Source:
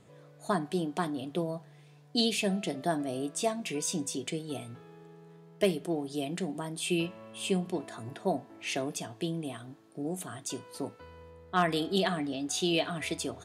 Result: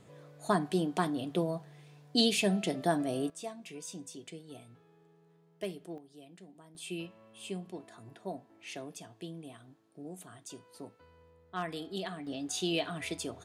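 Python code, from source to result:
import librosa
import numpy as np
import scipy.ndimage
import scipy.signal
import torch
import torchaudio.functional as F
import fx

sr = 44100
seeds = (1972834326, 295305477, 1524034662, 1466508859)

y = fx.gain(x, sr, db=fx.steps((0.0, 1.0), (3.3, -11.5), (5.98, -19.5), (6.75, -10.0), (12.27, -3.5)))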